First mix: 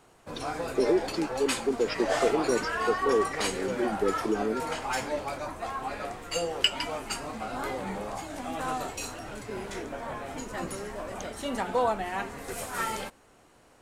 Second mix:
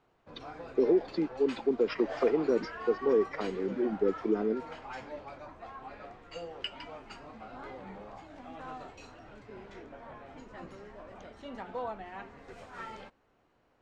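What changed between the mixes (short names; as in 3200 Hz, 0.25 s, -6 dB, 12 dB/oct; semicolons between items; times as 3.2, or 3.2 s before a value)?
background -10.5 dB; master: add air absorption 180 m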